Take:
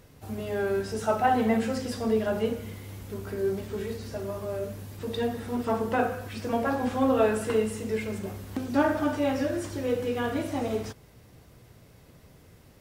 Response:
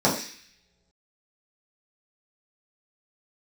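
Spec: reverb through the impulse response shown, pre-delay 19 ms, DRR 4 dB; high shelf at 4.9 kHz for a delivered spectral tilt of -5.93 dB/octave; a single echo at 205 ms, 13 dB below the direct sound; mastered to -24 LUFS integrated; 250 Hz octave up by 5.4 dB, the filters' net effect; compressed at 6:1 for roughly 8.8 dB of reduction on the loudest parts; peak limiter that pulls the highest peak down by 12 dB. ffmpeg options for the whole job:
-filter_complex "[0:a]equalizer=f=250:t=o:g=6,highshelf=f=4900:g=-7.5,acompressor=threshold=0.0562:ratio=6,alimiter=level_in=1.5:limit=0.0631:level=0:latency=1,volume=0.668,aecho=1:1:205:0.224,asplit=2[s0][s1];[1:a]atrim=start_sample=2205,adelay=19[s2];[s1][s2]afir=irnorm=-1:irlink=0,volume=0.0891[s3];[s0][s3]amix=inputs=2:normalize=0,volume=2.37"

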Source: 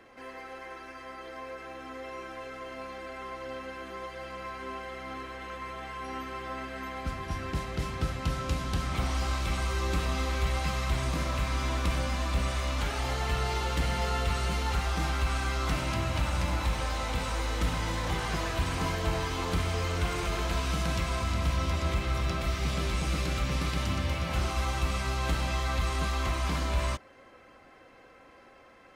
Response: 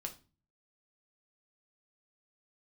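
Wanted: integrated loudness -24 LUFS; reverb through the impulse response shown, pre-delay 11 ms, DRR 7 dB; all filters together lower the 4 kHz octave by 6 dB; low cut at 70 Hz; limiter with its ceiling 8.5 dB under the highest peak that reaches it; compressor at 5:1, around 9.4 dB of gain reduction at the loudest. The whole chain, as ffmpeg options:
-filter_complex "[0:a]highpass=70,equalizer=f=4000:t=o:g=-8,acompressor=threshold=0.0141:ratio=5,alimiter=level_in=3.55:limit=0.0631:level=0:latency=1,volume=0.282,asplit=2[s0][s1];[1:a]atrim=start_sample=2205,adelay=11[s2];[s1][s2]afir=irnorm=-1:irlink=0,volume=0.562[s3];[s0][s3]amix=inputs=2:normalize=0,volume=8.91"

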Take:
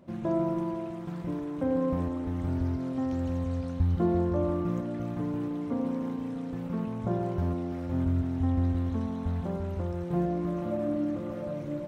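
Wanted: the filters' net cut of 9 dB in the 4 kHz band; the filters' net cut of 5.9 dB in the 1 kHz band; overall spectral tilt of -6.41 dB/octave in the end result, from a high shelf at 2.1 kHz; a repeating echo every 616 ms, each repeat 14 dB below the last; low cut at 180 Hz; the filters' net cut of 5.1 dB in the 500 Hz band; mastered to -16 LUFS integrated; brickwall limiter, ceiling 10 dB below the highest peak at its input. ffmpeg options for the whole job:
-af "highpass=180,equalizer=f=500:t=o:g=-5.5,equalizer=f=1000:t=o:g=-4.5,highshelf=f=2100:g=-3.5,equalizer=f=4000:t=o:g=-8.5,alimiter=level_in=1.68:limit=0.0631:level=0:latency=1,volume=0.596,aecho=1:1:616|1232:0.2|0.0399,volume=10.6"

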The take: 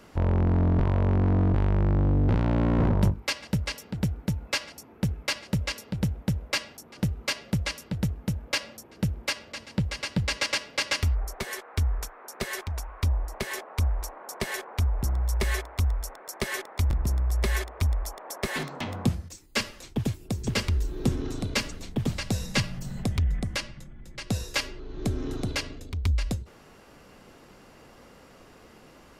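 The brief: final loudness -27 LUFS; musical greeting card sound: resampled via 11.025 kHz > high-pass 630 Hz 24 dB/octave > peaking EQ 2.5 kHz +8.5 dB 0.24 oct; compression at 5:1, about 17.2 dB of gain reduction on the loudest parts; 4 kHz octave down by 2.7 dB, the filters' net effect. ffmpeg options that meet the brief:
-af "equalizer=f=4000:t=o:g=-5,acompressor=threshold=0.0126:ratio=5,aresample=11025,aresample=44100,highpass=f=630:w=0.5412,highpass=f=630:w=1.3066,equalizer=f=2500:t=o:w=0.24:g=8.5,volume=8.41"

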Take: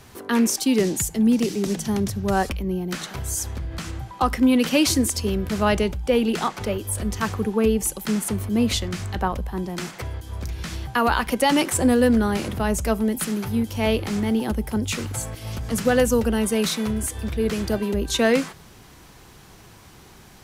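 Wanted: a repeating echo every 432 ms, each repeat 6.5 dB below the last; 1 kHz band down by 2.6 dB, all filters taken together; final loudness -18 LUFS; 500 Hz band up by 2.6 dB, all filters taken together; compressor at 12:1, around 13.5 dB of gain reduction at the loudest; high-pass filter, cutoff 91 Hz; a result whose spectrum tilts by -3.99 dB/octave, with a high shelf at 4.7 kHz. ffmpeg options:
-af "highpass=91,equalizer=f=500:t=o:g=4,equalizer=f=1000:t=o:g=-5.5,highshelf=f=4700:g=8,acompressor=threshold=0.0501:ratio=12,aecho=1:1:432|864|1296|1728|2160|2592:0.473|0.222|0.105|0.0491|0.0231|0.0109,volume=3.55"

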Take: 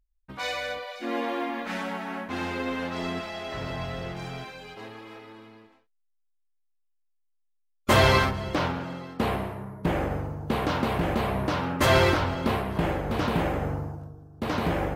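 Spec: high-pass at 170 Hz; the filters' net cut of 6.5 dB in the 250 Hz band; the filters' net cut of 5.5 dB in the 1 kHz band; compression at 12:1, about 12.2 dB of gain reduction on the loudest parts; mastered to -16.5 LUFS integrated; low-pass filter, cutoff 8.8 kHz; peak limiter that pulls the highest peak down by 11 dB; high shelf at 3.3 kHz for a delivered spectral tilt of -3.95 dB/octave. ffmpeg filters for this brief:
-af "highpass=170,lowpass=8800,equalizer=f=250:t=o:g=-7,equalizer=f=1000:t=o:g=-7.5,highshelf=f=3300:g=7.5,acompressor=threshold=0.0316:ratio=12,volume=10.6,alimiter=limit=0.473:level=0:latency=1"

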